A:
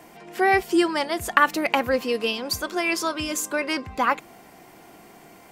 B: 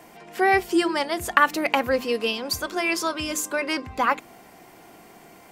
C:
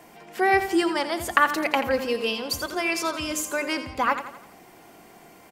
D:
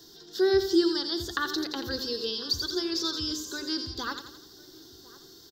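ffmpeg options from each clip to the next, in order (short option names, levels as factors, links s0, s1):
-af "bandreject=f=50:t=h:w=6,bandreject=f=100:t=h:w=6,bandreject=f=150:t=h:w=6,bandreject=f=200:t=h:w=6,bandreject=f=250:t=h:w=6,bandreject=f=300:t=h:w=6,bandreject=f=350:t=h:w=6"
-af "aecho=1:1:85|170|255|340|425:0.282|0.132|0.0623|0.0293|0.0138,volume=0.841"
-filter_complex "[0:a]acrossover=split=2800[s0][s1];[s1]acompressor=threshold=0.01:ratio=4:attack=1:release=60[s2];[s0][s2]amix=inputs=2:normalize=0,firequalizer=gain_entry='entry(120,0);entry(190,-12);entry(380,3);entry(580,-21);entry(1600,-6);entry(2300,-28);entry(3600,13);entry(5300,13);entry(9600,-15);entry(14000,4)':delay=0.05:min_phase=1,asplit=2[s3][s4];[s4]adelay=1050,volume=0.1,highshelf=f=4000:g=-23.6[s5];[s3][s5]amix=inputs=2:normalize=0"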